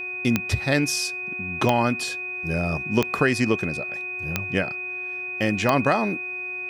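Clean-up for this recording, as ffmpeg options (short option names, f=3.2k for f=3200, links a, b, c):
-af "adeclick=t=4,bandreject=f=365.1:t=h:w=4,bandreject=f=730.2:t=h:w=4,bandreject=f=1.0953k:t=h:w=4,bandreject=f=1.4604k:t=h:w=4,bandreject=f=1.8255k:t=h:w=4,bandreject=f=2.5k:w=30"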